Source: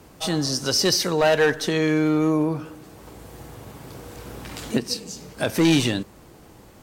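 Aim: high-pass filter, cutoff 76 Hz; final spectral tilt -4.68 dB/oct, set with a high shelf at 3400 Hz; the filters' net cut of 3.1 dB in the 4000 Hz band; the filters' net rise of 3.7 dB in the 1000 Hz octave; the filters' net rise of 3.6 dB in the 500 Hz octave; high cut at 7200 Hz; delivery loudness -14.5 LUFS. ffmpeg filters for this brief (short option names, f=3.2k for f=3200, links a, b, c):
-af "highpass=76,lowpass=7.2k,equalizer=f=500:t=o:g=3.5,equalizer=f=1k:t=o:g=3.5,highshelf=f=3.4k:g=5,equalizer=f=4k:t=o:g=-8,volume=6dB"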